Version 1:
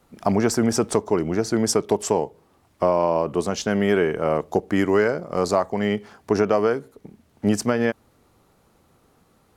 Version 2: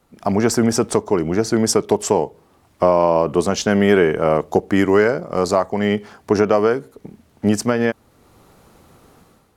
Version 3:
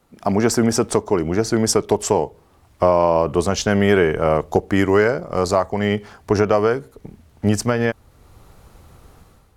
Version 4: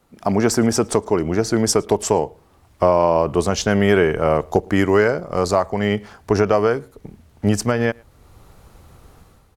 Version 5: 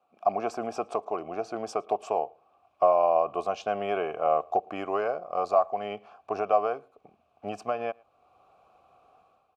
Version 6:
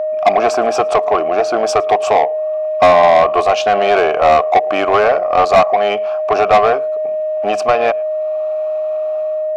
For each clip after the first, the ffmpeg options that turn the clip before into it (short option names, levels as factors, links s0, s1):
-af "dynaudnorm=f=100:g=7:m=3.55,volume=0.891"
-af "asubboost=boost=4.5:cutoff=100"
-filter_complex "[0:a]asplit=2[s0][s1];[s1]adelay=110.8,volume=0.0398,highshelf=f=4000:g=-2.49[s2];[s0][s2]amix=inputs=2:normalize=0"
-filter_complex "[0:a]asplit=3[s0][s1][s2];[s0]bandpass=f=730:t=q:w=8,volume=1[s3];[s1]bandpass=f=1090:t=q:w=8,volume=0.501[s4];[s2]bandpass=f=2440:t=q:w=8,volume=0.355[s5];[s3][s4][s5]amix=inputs=3:normalize=0,volume=1.26"
-filter_complex "[0:a]aeval=exprs='val(0)+0.0178*sin(2*PI*620*n/s)':c=same,asplit=2[s0][s1];[s1]highpass=f=720:p=1,volume=11.2,asoftclip=type=tanh:threshold=0.376[s2];[s0][s2]amix=inputs=2:normalize=0,lowpass=f=5500:p=1,volume=0.501,volume=2.37"